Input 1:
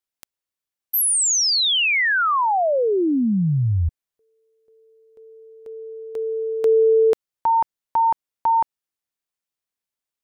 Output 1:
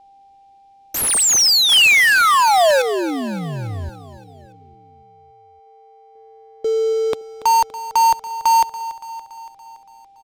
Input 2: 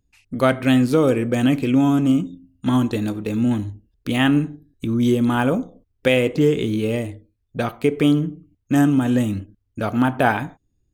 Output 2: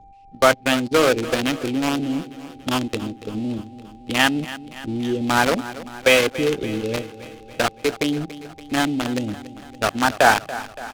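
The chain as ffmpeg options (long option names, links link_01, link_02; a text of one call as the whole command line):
ffmpeg -i in.wav -filter_complex "[0:a]aeval=exprs='val(0)+0.5*0.0668*sgn(val(0))':channel_layout=same,agate=range=-23dB:threshold=-20dB:ratio=16:release=38:detection=rms,equalizer=frequency=150:width=0.36:gain=-6,acrossover=split=380[link_01][link_02];[link_01]acompressor=threshold=-31dB:ratio=4:attack=0.1:release=180:knee=2.83:detection=peak[link_03];[link_03][link_02]amix=inputs=2:normalize=0,acrossover=split=520|3000[link_04][link_05][link_06];[link_05]acrusher=bits=3:mix=0:aa=0.000001[link_07];[link_04][link_07][link_06]amix=inputs=3:normalize=0,aeval=exprs='val(0)+0.00355*sin(2*PI*790*n/s)':channel_layout=same,adynamicsmooth=sensitivity=5:basefreq=1500,asplit=2[link_08][link_09];[link_09]aecho=0:1:284|568|852|1136|1420|1704:0.168|0.101|0.0604|0.0363|0.0218|0.0131[link_10];[link_08][link_10]amix=inputs=2:normalize=0,volume=4.5dB" out.wav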